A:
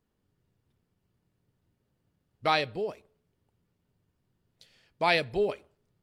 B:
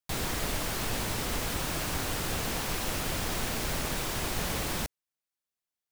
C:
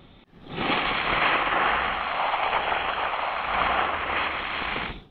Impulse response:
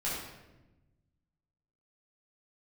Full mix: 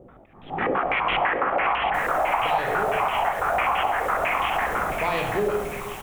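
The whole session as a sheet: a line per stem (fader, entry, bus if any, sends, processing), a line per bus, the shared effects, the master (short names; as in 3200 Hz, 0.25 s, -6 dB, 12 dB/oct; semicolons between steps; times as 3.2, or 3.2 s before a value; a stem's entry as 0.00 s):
+1.0 dB, 0.00 s, send -3.5 dB, no echo send, limiter -19.5 dBFS, peak gain reduction 9.5 dB
-6.0 dB, 1.85 s, no send, no echo send, dry
+2.0 dB, 0.00 s, send -17 dB, echo send -6.5 dB, bell 710 Hz +4.5 dB 0.54 oct; chorus 1.3 Hz, delay 15.5 ms, depth 4.8 ms; stepped low-pass 12 Hz 500–3000 Hz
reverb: on, RT60 1.0 s, pre-delay 9 ms
echo: feedback echo 0.733 s, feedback 39%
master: bell 4600 Hz -10.5 dB 0.66 oct; compressor 4:1, threshold -20 dBFS, peak gain reduction 9 dB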